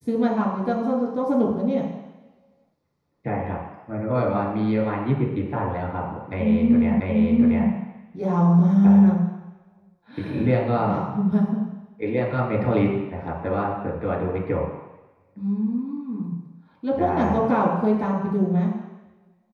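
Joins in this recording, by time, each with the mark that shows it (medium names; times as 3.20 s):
7.00 s: repeat of the last 0.69 s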